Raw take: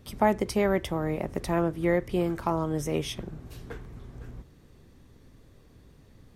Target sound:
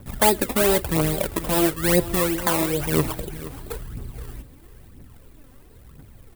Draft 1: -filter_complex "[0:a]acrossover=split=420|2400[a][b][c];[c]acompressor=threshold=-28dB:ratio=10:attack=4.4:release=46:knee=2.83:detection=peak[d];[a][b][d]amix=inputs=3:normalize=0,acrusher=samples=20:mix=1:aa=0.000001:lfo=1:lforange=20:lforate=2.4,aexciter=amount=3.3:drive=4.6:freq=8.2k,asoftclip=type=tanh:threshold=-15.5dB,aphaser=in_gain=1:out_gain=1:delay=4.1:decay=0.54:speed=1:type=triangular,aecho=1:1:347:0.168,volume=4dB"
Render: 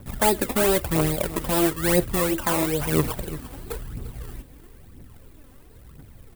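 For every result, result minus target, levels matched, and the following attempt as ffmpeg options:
soft clip: distortion +12 dB; echo 0.126 s early
-filter_complex "[0:a]acrossover=split=420|2400[a][b][c];[c]acompressor=threshold=-28dB:ratio=10:attack=4.4:release=46:knee=2.83:detection=peak[d];[a][b][d]amix=inputs=3:normalize=0,acrusher=samples=20:mix=1:aa=0.000001:lfo=1:lforange=20:lforate=2.4,aexciter=amount=3.3:drive=4.6:freq=8.2k,asoftclip=type=tanh:threshold=-5.5dB,aphaser=in_gain=1:out_gain=1:delay=4.1:decay=0.54:speed=1:type=triangular,aecho=1:1:347:0.168,volume=4dB"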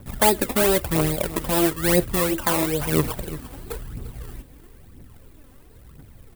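echo 0.126 s early
-filter_complex "[0:a]acrossover=split=420|2400[a][b][c];[c]acompressor=threshold=-28dB:ratio=10:attack=4.4:release=46:knee=2.83:detection=peak[d];[a][b][d]amix=inputs=3:normalize=0,acrusher=samples=20:mix=1:aa=0.000001:lfo=1:lforange=20:lforate=2.4,aexciter=amount=3.3:drive=4.6:freq=8.2k,asoftclip=type=tanh:threshold=-5.5dB,aphaser=in_gain=1:out_gain=1:delay=4.1:decay=0.54:speed=1:type=triangular,aecho=1:1:473:0.168,volume=4dB"

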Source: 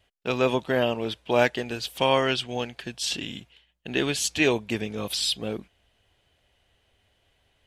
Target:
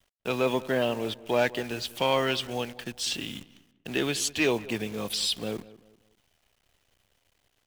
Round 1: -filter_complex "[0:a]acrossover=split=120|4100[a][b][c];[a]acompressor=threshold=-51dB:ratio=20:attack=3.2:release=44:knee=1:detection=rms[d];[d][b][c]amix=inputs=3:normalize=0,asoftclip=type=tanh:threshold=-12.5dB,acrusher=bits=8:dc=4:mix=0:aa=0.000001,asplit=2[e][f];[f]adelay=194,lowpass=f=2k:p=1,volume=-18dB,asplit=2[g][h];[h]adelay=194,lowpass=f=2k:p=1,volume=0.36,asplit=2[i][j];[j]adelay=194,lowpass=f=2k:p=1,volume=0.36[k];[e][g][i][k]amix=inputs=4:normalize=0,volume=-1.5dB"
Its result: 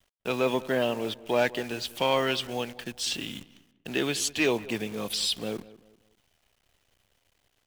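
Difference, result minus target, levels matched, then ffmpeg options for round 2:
compressor: peak gain reduction +6.5 dB
-filter_complex "[0:a]acrossover=split=120|4100[a][b][c];[a]acompressor=threshold=-44dB:ratio=20:attack=3.2:release=44:knee=1:detection=rms[d];[d][b][c]amix=inputs=3:normalize=0,asoftclip=type=tanh:threshold=-12.5dB,acrusher=bits=8:dc=4:mix=0:aa=0.000001,asplit=2[e][f];[f]adelay=194,lowpass=f=2k:p=1,volume=-18dB,asplit=2[g][h];[h]adelay=194,lowpass=f=2k:p=1,volume=0.36,asplit=2[i][j];[j]adelay=194,lowpass=f=2k:p=1,volume=0.36[k];[e][g][i][k]amix=inputs=4:normalize=0,volume=-1.5dB"

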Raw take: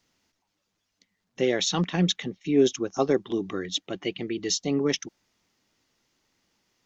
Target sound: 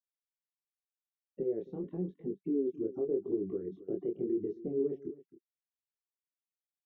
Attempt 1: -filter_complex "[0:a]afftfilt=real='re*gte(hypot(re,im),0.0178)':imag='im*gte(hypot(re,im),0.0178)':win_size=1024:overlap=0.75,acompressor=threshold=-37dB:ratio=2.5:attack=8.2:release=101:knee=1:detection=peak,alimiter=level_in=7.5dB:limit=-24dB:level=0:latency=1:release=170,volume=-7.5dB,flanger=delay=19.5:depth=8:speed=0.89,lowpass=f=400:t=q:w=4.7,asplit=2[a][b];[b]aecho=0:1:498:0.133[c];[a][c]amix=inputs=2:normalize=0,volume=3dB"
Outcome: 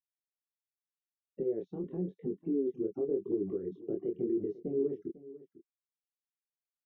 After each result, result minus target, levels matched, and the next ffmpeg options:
echo 0.229 s late; compressor: peak gain reduction -3.5 dB
-filter_complex "[0:a]afftfilt=real='re*gte(hypot(re,im),0.0178)':imag='im*gte(hypot(re,im),0.0178)':win_size=1024:overlap=0.75,acompressor=threshold=-37dB:ratio=2.5:attack=8.2:release=101:knee=1:detection=peak,alimiter=level_in=7.5dB:limit=-24dB:level=0:latency=1:release=170,volume=-7.5dB,flanger=delay=19.5:depth=8:speed=0.89,lowpass=f=400:t=q:w=4.7,asplit=2[a][b];[b]aecho=0:1:269:0.133[c];[a][c]amix=inputs=2:normalize=0,volume=3dB"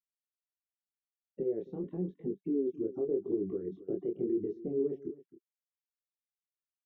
compressor: peak gain reduction -3.5 dB
-filter_complex "[0:a]afftfilt=real='re*gte(hypot(re,im),0.0178)':imag='im*gte(hypot(re,im),0.0178)':win_size=1024:overlap=0.75,acompressor=threshold=-43dB:ratio=2.5:attack=8.2:release=101:knee=1:detection=peak,alimiter=level_in=7.5dB:limit=-24dB:level=0:latency=1:release=170,volume=-7.5dB,flanger=delay=19.5:depth=8:speed=0.89,lowpass=f=400:t=q:w=4.7,asplit=2[a][b];[b]aecho=0:1:269:0.133[c];[a][c]amix=inputs=2:normalize=0,volume=3dB"

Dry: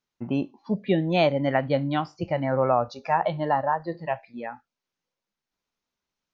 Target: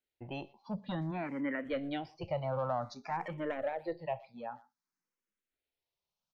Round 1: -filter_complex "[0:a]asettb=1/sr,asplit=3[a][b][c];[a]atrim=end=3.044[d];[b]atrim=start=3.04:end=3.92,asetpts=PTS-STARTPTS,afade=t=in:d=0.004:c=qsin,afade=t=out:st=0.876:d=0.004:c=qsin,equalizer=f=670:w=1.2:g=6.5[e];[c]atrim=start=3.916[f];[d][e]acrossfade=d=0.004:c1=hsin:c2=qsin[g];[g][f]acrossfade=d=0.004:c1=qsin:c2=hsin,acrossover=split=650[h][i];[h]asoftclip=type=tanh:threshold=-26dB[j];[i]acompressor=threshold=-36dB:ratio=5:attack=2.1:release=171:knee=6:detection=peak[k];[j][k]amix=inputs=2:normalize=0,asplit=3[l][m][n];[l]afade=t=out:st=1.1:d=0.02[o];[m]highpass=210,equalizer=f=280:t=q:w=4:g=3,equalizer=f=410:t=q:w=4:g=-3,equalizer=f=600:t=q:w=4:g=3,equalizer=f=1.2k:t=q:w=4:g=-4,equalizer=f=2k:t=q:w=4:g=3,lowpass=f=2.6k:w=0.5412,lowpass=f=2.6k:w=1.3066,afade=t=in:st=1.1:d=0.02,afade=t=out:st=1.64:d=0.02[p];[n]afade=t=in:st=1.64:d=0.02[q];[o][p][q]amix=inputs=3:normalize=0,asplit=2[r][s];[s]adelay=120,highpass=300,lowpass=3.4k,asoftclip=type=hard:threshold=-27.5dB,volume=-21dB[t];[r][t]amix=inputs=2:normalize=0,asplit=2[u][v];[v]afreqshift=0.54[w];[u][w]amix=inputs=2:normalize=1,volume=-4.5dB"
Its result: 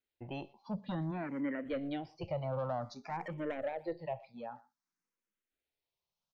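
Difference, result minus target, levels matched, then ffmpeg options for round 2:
compressor: peak gain reduction +7 dB
-filter_complex "[0:a]asettb=1/sr,asplit=3[a][b][c];[a]atrim=end=3.044[d];[b]atrim=start=3.04:end=3.92,asetpts=PTS-STARTPTS,afade=t=in:d=0.004:c=qsin,afade=t=out:st=0.876:d=0.004:c=qsin,equalizer=f=670:w=1.2:g=6.5[e];[c]atrim=start=3.916[f];[d][e]acrossfade=d=0.004:c1=hsin:c2=qsin[g];[g][f]acrossfade=d=0.004:c1=qsin:c2=hsin,acrossover=split=650[h][i];[h]asoftclip=type=tanh:threshold=-26dB[j];[i]acompressor=threshold=-27dB:ratio=5:attack=2.1:release=171:knee=6:detection=peak[k];[j][k]amix=inputs=2:normalize=0,asplit=3[l][m][n];[l]afade=t=out:st=1.1:d=0.02[o];[m]highpass=210,equalizer=f=280:t=q:w=4:g=3,equalizer=f=410:t=q:w=4:g=-3,equalizer=f=600:t=q:w=4:g=3,equalizer=f=1.2k:t=q:w=4:g=-4,equalizer=f=2k:t=q:w=4:g=3,lowpass=f=2.6k:w=0.5412,lowpass=f=2.6k:w=1.3066,afade=t=in:st=1.1:d=0.02,afade=t=out:st=1.64:d=0.02[p];[n]afade=t=in:st=1.64:d=0.02[q];[o][p][q]amix=inputs=3:normalize=0,asplit=2[r][s];[s]adelay=120,highpass=300,lowpass=3.4k,asoftclip=type=hard:threshold=-27.5dB,volume=-21dB[t];[r][t]amix=inputs=2:normalize=0,asplit=2[u][v];[v]afreqshift=0.54[w];[u][w]amix=inputs=2:normalize=1,volume=-4.5dB"

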